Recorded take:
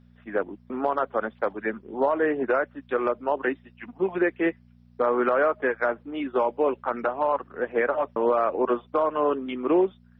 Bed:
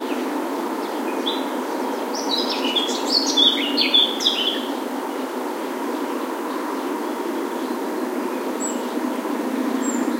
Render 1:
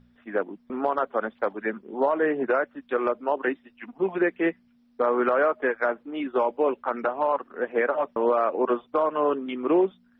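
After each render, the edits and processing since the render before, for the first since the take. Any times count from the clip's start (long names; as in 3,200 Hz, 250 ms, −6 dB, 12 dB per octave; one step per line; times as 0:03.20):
hum removal 60 Hz, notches 3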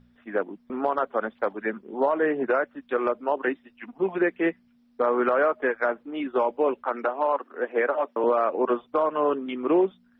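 0:06.84–0:08.24: high-pass filter 240 Hz 24 dB per octave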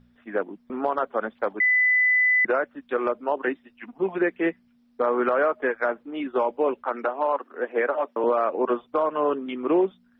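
0:01.60–0:02.45: beep over 2,000 Hz −16.5 dBFS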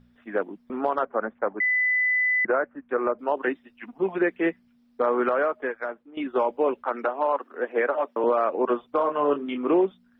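0:01.05–0:03.19: low-pass filter 2,000 Hz 24 dB per octave
0:05.16–0:06.17: fade out, to −13.5 dB
0:08.97–0:09.74: double-tracking delay 28 ms −7 dB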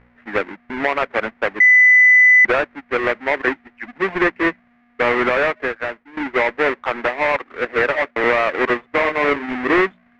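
each half-wave held at its own peak
low-pass with resonance 2,000 Hz, resonance Q 3.4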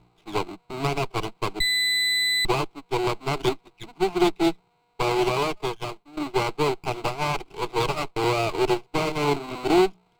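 lower of the sound and its delayed copy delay 0.41 ms
phaser with its sweep stopped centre 360 Hz, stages 8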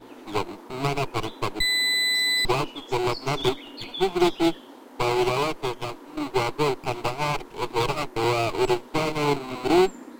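mix in bed −20 dB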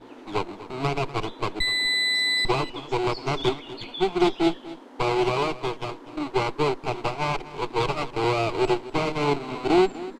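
high-frequency loss of the air 63 metres
single-tap delay 246 ms −16.5 dB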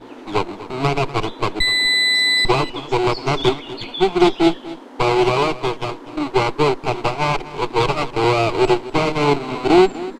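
level +7 dB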